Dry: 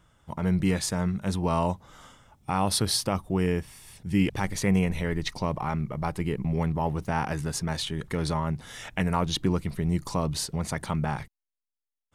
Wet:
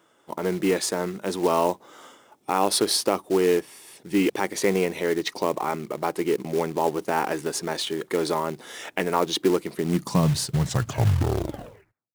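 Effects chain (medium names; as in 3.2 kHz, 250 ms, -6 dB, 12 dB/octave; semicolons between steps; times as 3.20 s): tape stop on the ending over 1.70 s; high-pass sweep 360 Hz -> 110 Hz, 9.74–10.36 s; short-mantissa float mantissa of 2-bit; trim +3 dB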